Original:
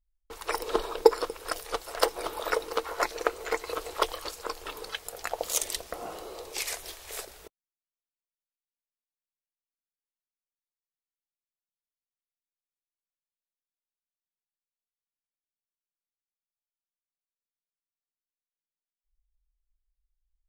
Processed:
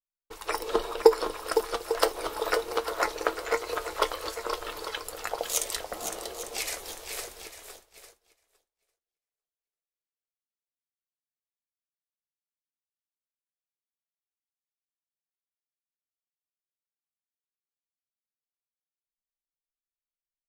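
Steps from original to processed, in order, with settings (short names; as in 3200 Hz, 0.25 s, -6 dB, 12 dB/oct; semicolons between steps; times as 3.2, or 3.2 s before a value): swung echo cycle 0.849 s, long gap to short 1.5:1, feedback 31%, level -8 dB; flange 1.1 Hz, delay 8.4 ms, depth 1.2 ms, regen +66%; expander -48 dBFS; gain +4.5 dB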